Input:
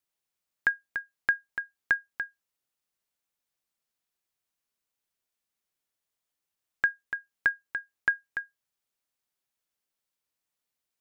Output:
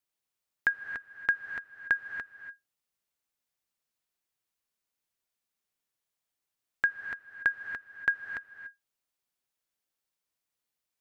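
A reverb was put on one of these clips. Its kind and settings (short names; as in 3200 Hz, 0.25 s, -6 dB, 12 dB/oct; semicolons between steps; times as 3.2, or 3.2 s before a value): non-linear reverb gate 0.31 s rising, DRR 8.5 dB; gain -1.5 dB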